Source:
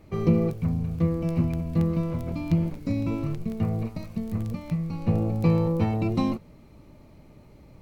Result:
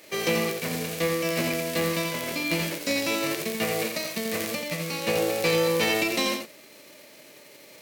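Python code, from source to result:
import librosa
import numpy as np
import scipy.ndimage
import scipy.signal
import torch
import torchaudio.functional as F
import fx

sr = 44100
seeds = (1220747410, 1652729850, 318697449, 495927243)

p1 = fx.envelope_flatten(x, sr, power=0.6)
p2 = scipy.signal.sosfilt(scipy.signal.butter(2, 450.0, 'highpass', fs=sr, output='sos'), p1)
p3 = fx.band_shelf(p2, sr, hz=1000.0, db=-9.0, octaves=1.2)
p4 = fx.rider(p3, sr, range_db=10, speed_s=2.0)
p5 = p3 + (p4 * 10.0 ** (1.5 / 20.0))
p6 = 10.0 ** (-16.0 / 20.0) * np.tanh(p5 / 10.0 ** (-16.0 / 20.0))
p7 = p6 + fx.echo_single(p6, sr, ms=85, db=-6.0, dry=0)
y = fx.env_flatten(p7, sr, amount_pct=50, at=(5.52, 6.04))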